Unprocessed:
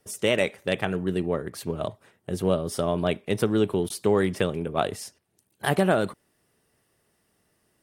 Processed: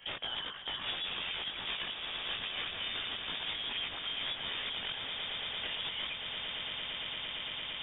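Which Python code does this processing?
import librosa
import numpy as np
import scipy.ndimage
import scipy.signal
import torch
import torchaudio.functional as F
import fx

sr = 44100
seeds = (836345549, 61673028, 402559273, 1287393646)

p1 = scipy.signal.sosfilt(scipy.signal.butter(4, 120.0, 'highpass', fs=sr, output='sos'), x)
p2 = fx.low_shelf(p1, sr, hz=210.0, db=-12.0)
p3 = fx.over_compress(p2, sr, threshold_db=-32.0, ratio=-1.0)
p4 = (np.mod(10.0 ** (26.0 / 20.0) * p3 + 1.0, 2.0) - 1.0) / 10.0 ** (26.0 / 20.0)
p5 = fx.chorus_voices(p4, sr, voices=4, hz=0.98, base_ms=19, depth_ms=3.3, mix_pct=55)
p6 = p5 + fx.echo_swell(p5, sr, ms=114, loudest=8, wet_db=-14, dry=0)
p7 = fx.freq_invert(p6, sr, carrier_hz=3600)
p8 = fx.band_squash(p7, sr, depth_pct=100)
y = p8 * 10.0 ** (-2.5 / 20.0)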